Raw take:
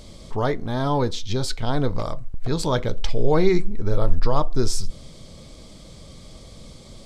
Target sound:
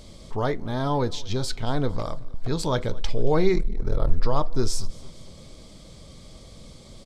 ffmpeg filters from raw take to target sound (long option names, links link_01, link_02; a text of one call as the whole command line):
ffmpeg -i in.wav -filter_complex "[0:a]aecho=1:1:227|454|681|908:0.0668|0.0361|0.0195|0.0105,asettb=1/sr,asplit=3[link_01][link_02][link_03];[link_01]atrim=end=3.544[link_04];[link_02]atrim=start=3.54:end=4.09,asetpts=PTS-STARTPTS,afade=type=in:duration=0.004:curve=qsin,afade=type=out:start_time=0.546:duration=0.004:curve=qsin,aeval=exprs='val(0)*sin(2*PI*20*n/s)':channel_layout=same[link_05];[link_03]atrim=start=4.086[link_06];[link_04][link_05]acrossfade=duration=0.004:curve1=hsin:curve2=qsin[link_07];[link_07][link_06]acrossfade=duration=0.004:curve1=qsin:curve2=hsin,volume=-2.5dB" out.wav